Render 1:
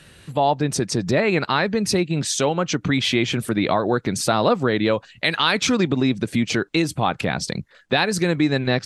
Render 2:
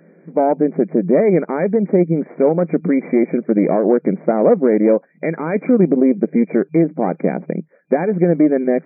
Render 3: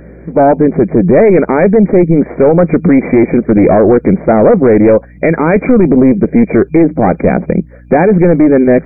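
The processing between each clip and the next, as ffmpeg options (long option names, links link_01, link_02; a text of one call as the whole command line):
ffmpeg -i in.wav -af "aeval=exprs='0.596*(cos(1*acos(clip(val(0)/0.596,-1,1)))-cos(1*PI/2))+0.0668*(cos(6*acos(clip(val(0)/0.596,-1,1)))-cos(6*PI/2))':channel_layout=same,lowshelf=frequency=770:width_type=q:width=1.5:gain=11.5,afftfilt=real='re*between(b*sr/4096,160,2400)':imag='im*between(b*sr/4096,160,2400)':win_size=4096:overlap=0.75,volume=-6.5dB" out.wav
ffmpeg -i in.wav -af "aeval=exprs='val(0)+0.00398*(sin(2*PI*60*n/s)+sin(2*PI*2*60*n/s)/2+sin(2*PI*3*60*n/s)/3+sin(2*PI*4*60*n/s)/4+sin(2*PI*5*60*n/s)/5)':channel_layout=same,apsyclip=14.5dB,volume=-1.5dB" out.wav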